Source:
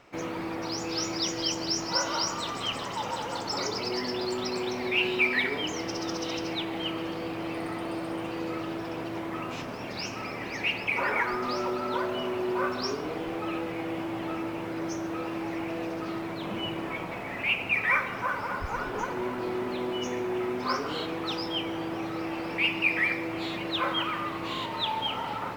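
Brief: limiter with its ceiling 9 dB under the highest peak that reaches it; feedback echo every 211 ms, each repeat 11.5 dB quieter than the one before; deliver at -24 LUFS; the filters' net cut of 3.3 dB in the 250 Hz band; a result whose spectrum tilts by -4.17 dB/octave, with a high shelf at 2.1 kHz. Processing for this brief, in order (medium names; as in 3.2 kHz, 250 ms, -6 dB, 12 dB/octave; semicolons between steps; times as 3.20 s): peaking EQ 250 Hz -5 dB; treble shelf 2.1 kHz -6 dB; peak limiter -24.5 dBFS; feedback delay 211 ms, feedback 27%, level -11.5 dB; trim +10.5 dB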